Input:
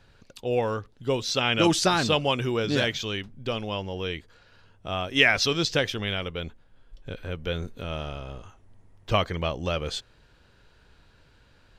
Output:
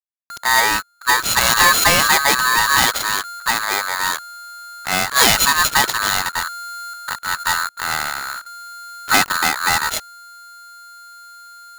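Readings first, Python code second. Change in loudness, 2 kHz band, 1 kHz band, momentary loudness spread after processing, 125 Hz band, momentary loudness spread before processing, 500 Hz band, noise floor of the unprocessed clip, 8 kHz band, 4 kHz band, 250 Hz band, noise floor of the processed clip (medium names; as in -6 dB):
+10.0 dB, +12.5 dB, +14.0 dB, 17 LU, -3.5 dB, 16 LU, -2.0 dB, -59 dBFS, +18.5 dB, +9.5 dB, -2.5 dB, -48 dBFS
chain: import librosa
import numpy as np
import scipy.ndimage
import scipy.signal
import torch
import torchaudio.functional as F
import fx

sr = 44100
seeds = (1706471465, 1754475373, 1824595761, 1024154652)

y = np.r_[np.sort(x[:len(x) // 8 * 8].reshape(-1, 8), axis=1).ravel(), x[len(x) // 8 * 8:]]
y = fx.leveller(y, sr, passes=3)
y = fx.backlash(y, sr, play_db=-22.5)
y = y * np.sign(np.sin(2.0 * np.pi * 1400.0 * np.arange(len(y)) / sr))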